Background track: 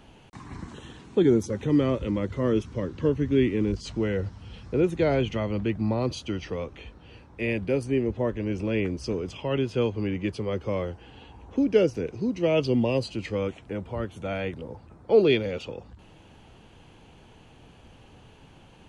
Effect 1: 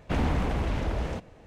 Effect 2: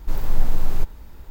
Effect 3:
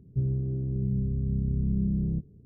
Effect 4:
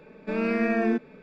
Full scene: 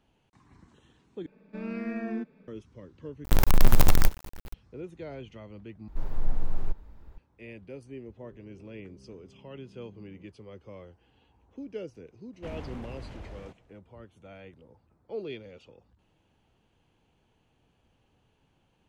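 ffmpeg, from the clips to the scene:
-filter_complex "[2:a]asplit=2[a][b];[0:a]volume=-17.5dB[c];[4:a]equalizer=f=190:w=2.2:g=8.5[d];[a]acrusher=bits=4:dc=4:mix=0:aa=0.000001[e];[b]lowpass=f=1.5k:p=1[f];[3:a]highpass=470[g];[c]asplit=4[h][i][j][k];[h]atrim=end=1.264[l];[d]atrim=end=1.22,asetpts=PTS-STARTPTS,volume=-13dB[m];[i]atrim=start=2.476:end=3.244[n];[e]atrim=end=1.3,asetpts=PTS-STARTPTS,volume=-0.5dB[o];[j]atrim=start=4.536:end=5.884[p];[f]atrim=end=1.3,asetpts=PTS-STARTPTS,volume=-8dB[q];[k]atrim=start=7.176[r];[g]atrim=end=2.45,asetpts=PTS-STARTPTS,volume=-10.5dB,afade=t=in:d=0.004:c=hsin,afade=t=out:st=2.446:d=0.004:c=hsin,adelay=8060[s];[1:a]atrim=end=1.46,asetpts=PTS-STARTPTS,volume=-14.5dB,afade=t=in:d=0.004:c=hsin,afade=t=out:st=1.456:d=0.004:c=hsin,adelay=12330[t];[l][m]acrossfade=d=0.004:c1=hsin:c2=hsin[u];[u][n]acrossfade=d=0.004:c1=hsin:c2=hsin[v];[v][o]acrossfade=d=0.004:c1=hsin:c2=hsin[w];[w][p]acrossfade=d=0.004:c1=hsin:c2=hsin[x];[x][q]acrossfade=d=0.004:c1=hsin:c2=hsin[y];[y][r]acrossfade=d=0.004:c1=hsin:c2=hsin[z];[z][s][t]amix=inputs=3:normalize=0"

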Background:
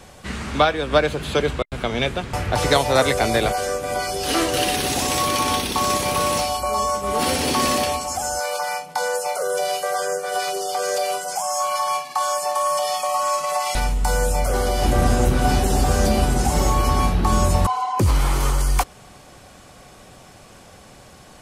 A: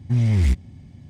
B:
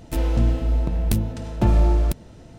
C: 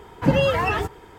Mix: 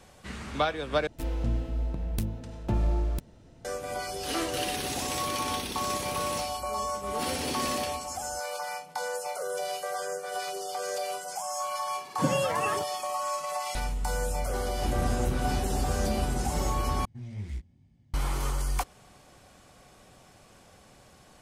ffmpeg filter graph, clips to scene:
-filter_complex "[0:a]volume=-10dB[a];[3:a]highpass=f=120:w=0.5412,highpass=f=120:w=1.3066[b];[1:a]flanger=delay=17:depth=5.7:speed=2.2[c];[a]asplit=3[d][e][f];[d]atrim=end=1.074[g];[2:a]atrim=end=2.58,asetpts=PTS-STARTPTS,volume=-9.5dB[h];[e]atrim=start=3.646:end=17.054[i];[c]atrim=end=1.09,asetpts=PTS-STARTPTS,volume=-15.5dB[j];[f]atrim=start=18.136[k];[b]atrim=end=1.18,asetpts=PTS-STARTPTS,volume=-8.5dB,afade=t=in:d=0.004:c=hsin,afade=t=out:st=1.176:d=0.004:c=hsin,adelay=11960[l];[g][h]acrossfade=d=0.004:c1=hsin:c2=hsin[m];[m][i]acrossfade=d=0.004:c1=hsin:c2=hsin[n];[n][j]acrossfade=d=0.004:c1=hsin:c2=hsin[o];[o][k]acrossfade=d=0.004:c1=hsin:c2=hsin[p];[p][l]amix=inputs=2:normalize=0"

